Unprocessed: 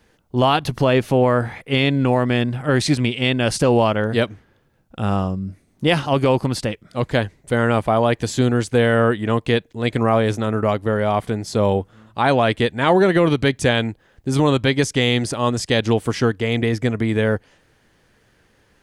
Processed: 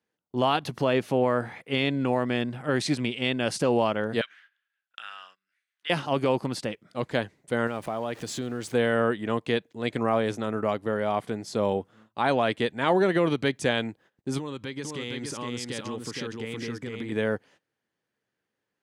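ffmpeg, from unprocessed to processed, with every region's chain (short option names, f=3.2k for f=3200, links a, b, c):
-filter_complex "[0:a]asettb=1/sr,asplit=3[a][b][c];[a]atrim=end=4.214[d];[b]atrim=start=4.21:end=5.9,asetpts=PTS-STARTPTS,afade=t=in:d=0.004:c=qsin,afade=t=out:st=1.686:d=0.004:c=qsin,equalizer=f=3.1k:t=o:w=0.95:g=12,acompressor=threshold=-29dB:ratio=3:attack=3.2:release=140:knee=1:detection=peak,highpass=f=1.6k:t=q:w=4.2[e];[c]atrim=start=5.896[f];[d][e]acrossfade=d=0.004:c1=hsin:c2=qsin[g];[g][f]acrossfade=d=0.004:c1=qsin:c2=hsin,asettb=1/sr,asplit=3[h][i][j];[h]atrim=end=7.674[k];[i]atrim=start=7.67:end=8.74,asetpts=PTS-STARTPTS,afade=t=in:d=0.004:c=qsin,afade=t=out:st=1.066:d=0.004:c=qsin,aeval=exprs='val(0)+0.5*0.0224*sgn(val(0))':c=same,acompressor=threshold=-21dB:ratio=3:attack=3.2:release=140:knee=1:detection=peak[l];[j]atrim=start=8.736[m];[k][l]acrossfade=d=0.004:c1=hsin:c2=qsin[n];[n][m]acrossfade=d=0.004:c1=qsin:c2=hsin,asettb=1/sr,asplit=3[o][p][q];[o]atrim=end=14.384[r];[p]atrim=start=14.38:end=17.12,asetpts=PTS-STARTPTS,afade=t=in:d=0.004:c=qsin,afade=t=out:st=2.736:d=0.004:c=qsin,equalizer=f=680:t=o:w=0.32:g=-12,acompressor=threshold=-23dB:ratio=5:attack=3.2:release=140:knee=1:detection=peak,aecho=1:1:465:0.668,atrim=end_sample=120834[s];[q]atrim=start=17.116[t];[r][s]acrossfade=d=0.004:c1=hsin:c2=qsin[u];[u][t]acrossfade=d=0.004:c1=qsin:c2=hsin,agate=range=-17dB:threshold=-45dB:ratio=16:detection=peak,highpass=160,highshelf=f=9.3k:g=-3.5,volume=-7dB"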